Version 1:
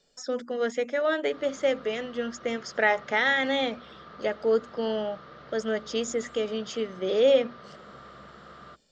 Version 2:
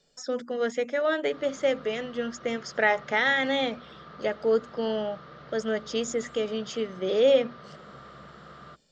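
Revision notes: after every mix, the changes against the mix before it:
master: add peaking EQ 150 Hz +6 dB 0.36 oct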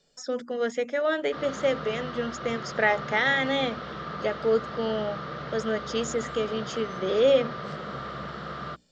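background +11.0 dB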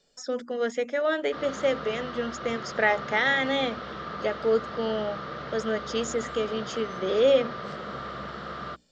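master: add peaking EQ 150 Hz -6 dB 0.36 oct

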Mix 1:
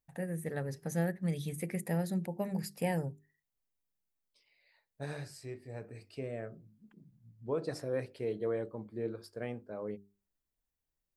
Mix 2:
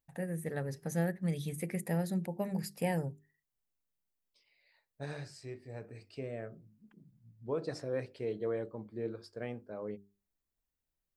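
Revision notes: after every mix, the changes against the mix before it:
second voice: add Chebyshev low-pass 6.6 kHz, order 2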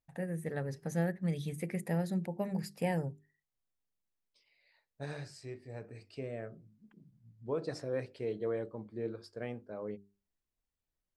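first voice: add treble shelf 9.8 kHz -11 dB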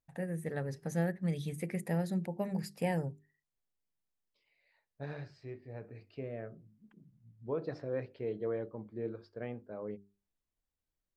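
second voice: add distance through air 250 m

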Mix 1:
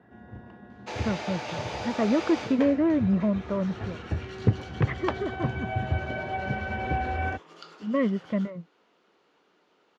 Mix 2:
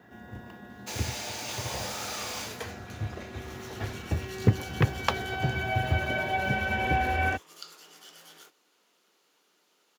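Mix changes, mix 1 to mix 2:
speech: muted; second sound -8.5 dB; master: remove tape spacing loss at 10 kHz 31 dB

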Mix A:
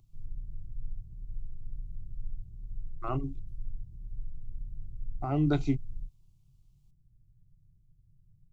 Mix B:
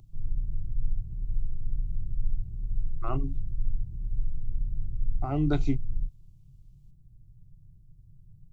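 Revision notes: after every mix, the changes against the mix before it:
background +9.5 dB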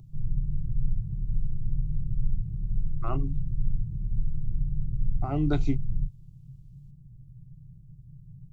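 background: add peaking EQ 140 Hz +12 dB 1.6 oct; master: add peaking EQ 95 Hz -8 dB 0.27 oct

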